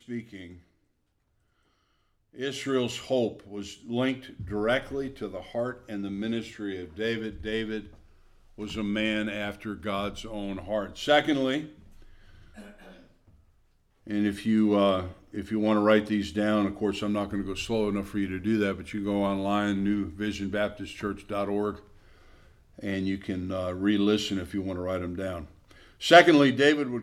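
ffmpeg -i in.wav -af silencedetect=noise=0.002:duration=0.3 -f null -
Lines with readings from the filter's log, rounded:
silence_start: 0.64
silence_end: 2.33 | silence_duration: 1.69
silence_start: 13.50
silence_end: 14.06 | silence_duration: 0.56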